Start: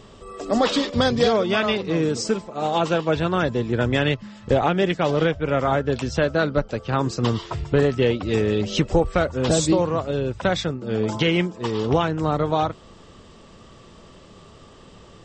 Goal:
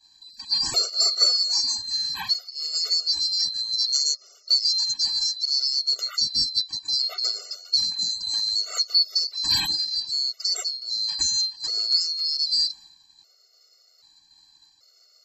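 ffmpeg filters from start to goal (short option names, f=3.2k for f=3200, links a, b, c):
-af "afftfilt=real='real(if(lt(b,736),b+184*(1-2*mod(floor(b/184),2)),b),0)':imag='imag(if(lt(b,736),b+184*(1-2*mod(floor(b/184),2)),b),0)':win_size=2048:overlap=0.75,agate=range=-33dB:threshold=-39dB:ratio=3:detection=peak,afftfilt=real='re*gt(sin(2*PI*0.64*pts/sr)*(1-2*mod(floor(b*sr/1024/380),2)),0)':imag='im*gt(sin(2*PI*0.64*pts/sr)*(1-2*mod(floor(b*sr/1024/380),2)),0)':win_size=1024:overlap=0.75"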